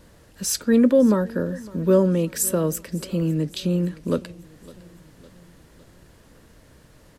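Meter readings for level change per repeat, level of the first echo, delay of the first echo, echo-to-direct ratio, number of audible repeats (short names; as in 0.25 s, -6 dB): -5.0 dB, -22.0 dB, 0.557 s, -20.5 dB, 3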